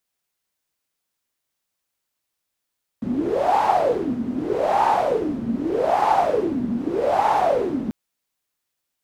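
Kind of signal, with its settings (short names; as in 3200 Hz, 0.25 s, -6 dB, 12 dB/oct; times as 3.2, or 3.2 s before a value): wind-like swept noise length 4.89 s, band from 230 Hz, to 860 Hz, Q 10, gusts 4, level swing 8 dB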